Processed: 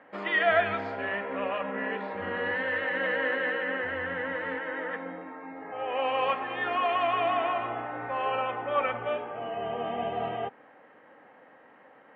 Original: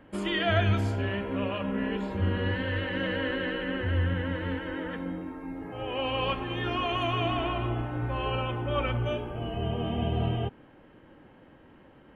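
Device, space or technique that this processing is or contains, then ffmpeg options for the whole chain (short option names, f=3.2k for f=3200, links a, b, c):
phone earpiece: -af "highpass=340,equalizer=f=350:t=q:w=4:g=-8,equalizer=f=490:t=q:w=4:g=4,equalizer=f=750:t=q:w=4:g=7,equalizer=f=1.2k:t=q:w=4:g=5,equalizer=f=1.9k:t=q:w=4:g=8,equalizer=f=3.1k:t=q:w=4:g=-6,lowpass=f=3.9k:w=0.5412,lowpass=f=3.9k:w=1.3066"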